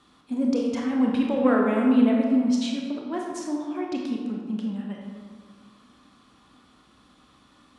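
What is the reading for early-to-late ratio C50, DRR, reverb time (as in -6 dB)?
1.0 dB, -1.0 dB, 1.8 s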